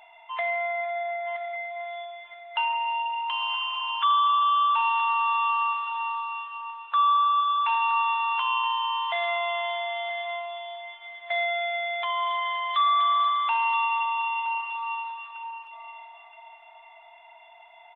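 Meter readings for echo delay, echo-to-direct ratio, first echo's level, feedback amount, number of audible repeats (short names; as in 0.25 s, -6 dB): 0.972 s, -12.0 dB, -12.5 dB, 26%, 2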